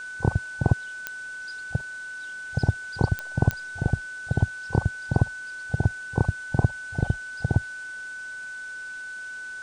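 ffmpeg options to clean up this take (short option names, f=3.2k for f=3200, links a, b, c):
-af "adeclick=t=4,bandreject=f=1.5k:w=30,afwtdn=0.0035"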